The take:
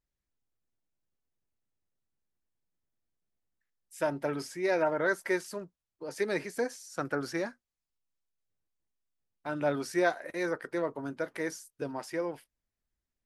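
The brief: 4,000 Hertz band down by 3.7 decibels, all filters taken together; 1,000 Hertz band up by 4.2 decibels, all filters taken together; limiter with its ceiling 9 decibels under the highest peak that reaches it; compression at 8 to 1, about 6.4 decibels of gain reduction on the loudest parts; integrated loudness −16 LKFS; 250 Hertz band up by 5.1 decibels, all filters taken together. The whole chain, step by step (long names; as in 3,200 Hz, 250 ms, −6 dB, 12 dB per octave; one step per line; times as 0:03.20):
parametric band 250 Hz +7 dB
parametric band 1,000 Hz +5.5 dB
parametric band 4,000 Hz −5 dB
downward compressor 8 to 1, threshold −26 dBFS
level +20 dB
brickwall limiter −5 dBFS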